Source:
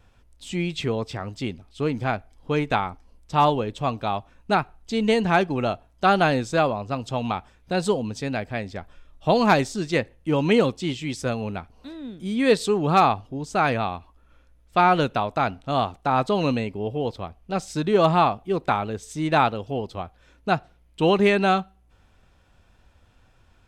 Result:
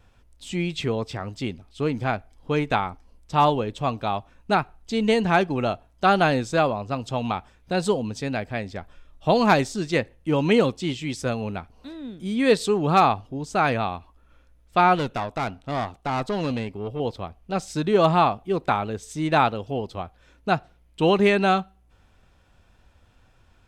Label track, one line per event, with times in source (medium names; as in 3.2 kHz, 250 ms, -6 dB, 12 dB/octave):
14.950000	17.000000	valve stage drive 20 dB, bias 0.5